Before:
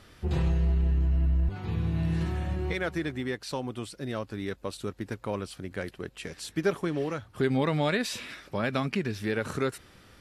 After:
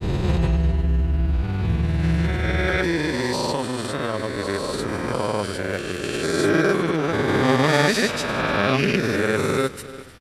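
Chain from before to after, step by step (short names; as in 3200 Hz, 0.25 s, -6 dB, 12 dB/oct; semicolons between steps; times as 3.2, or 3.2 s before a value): spectral swells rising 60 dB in 2.65 s; echo 0.312 s -16 dB; grains, pitch spread up and down by 0 st; gain +6 dB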